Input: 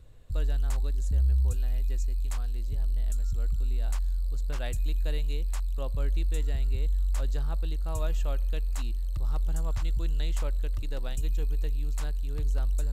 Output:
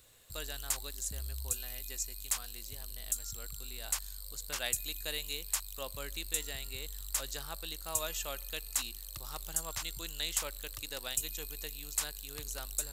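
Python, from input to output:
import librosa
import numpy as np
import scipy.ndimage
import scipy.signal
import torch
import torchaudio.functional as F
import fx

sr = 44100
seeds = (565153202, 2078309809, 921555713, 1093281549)

y = fx.tilt_eq(x, sr, slope=4.5)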